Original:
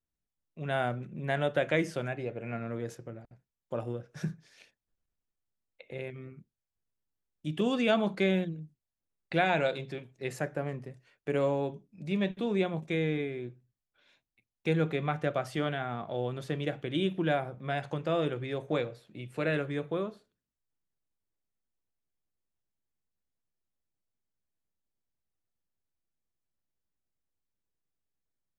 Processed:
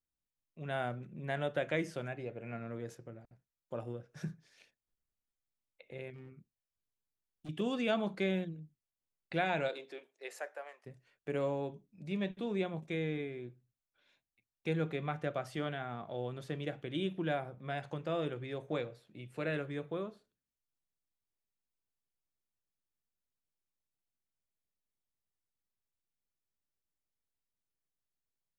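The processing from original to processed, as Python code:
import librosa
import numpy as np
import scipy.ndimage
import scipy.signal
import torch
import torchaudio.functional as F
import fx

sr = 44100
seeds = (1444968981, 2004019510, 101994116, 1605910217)

y = fx.clip_hard(x, sr, threshold_db=-39.5, at=(6.13, 7.49))
y = fx.highpass(y, sr, hz=fx.line((9.68, 260.0), (10.85, 750.0)), slope=24, at=(9.68, 10.85), fade=0.02)
y = y * librosa.db_to_amplitude(-6.0)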